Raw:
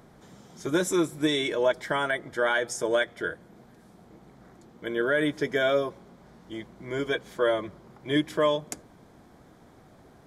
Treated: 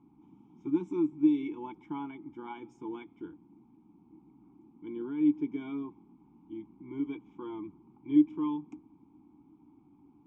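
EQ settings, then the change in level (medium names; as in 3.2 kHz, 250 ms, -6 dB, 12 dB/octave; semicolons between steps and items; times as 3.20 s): vowel filter u; tilt EQ -3 dB/octave; static phaser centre 2.9 kHz, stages 8; +2.5 dB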